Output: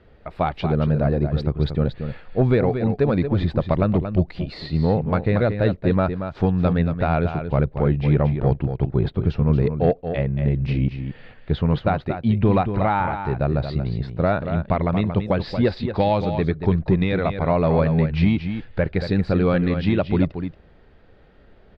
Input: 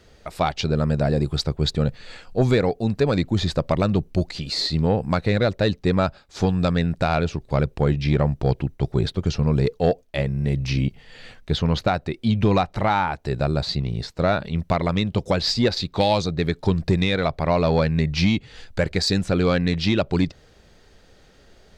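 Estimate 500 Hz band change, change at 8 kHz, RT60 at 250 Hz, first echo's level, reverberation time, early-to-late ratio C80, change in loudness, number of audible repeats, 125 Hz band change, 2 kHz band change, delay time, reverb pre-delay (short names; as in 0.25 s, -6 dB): +1.0 dB, under -25 dB, none, -8.5 dB, none, none, +1.0 dB, 1, +2.0 dB, -2.5 dB, 0.23 s, none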